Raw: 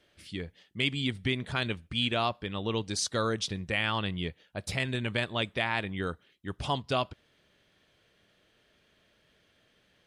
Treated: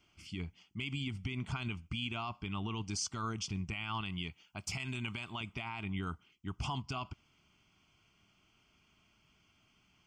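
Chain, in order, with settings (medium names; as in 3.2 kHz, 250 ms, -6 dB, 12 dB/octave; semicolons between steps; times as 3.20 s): 4.01–5.41 s: tilt EQ +1.5 dB/octave; peak limiter -26 dBFS, peak gain reduction 12.5 dB; static phaser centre 2.6 kHz, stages 8; trim +1 dB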